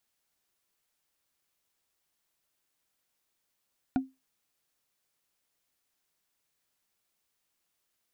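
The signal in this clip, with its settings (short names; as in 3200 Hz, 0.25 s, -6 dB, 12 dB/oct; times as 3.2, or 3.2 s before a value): wood hit, lowest mode 264 Hz, decay 0.22 s, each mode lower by 7 dB, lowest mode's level -20 dB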